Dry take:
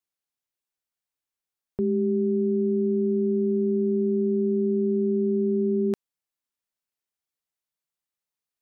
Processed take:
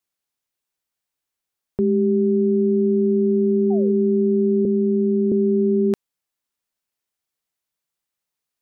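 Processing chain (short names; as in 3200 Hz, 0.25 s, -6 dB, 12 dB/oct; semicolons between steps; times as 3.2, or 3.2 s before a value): 3.7–3.94 painted sound fall 380–800 Hz -39 dBFS; 4.65–5.32 rippled Chebyshev high-pass 150 Hz, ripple 3 dB; gain +5.5 dB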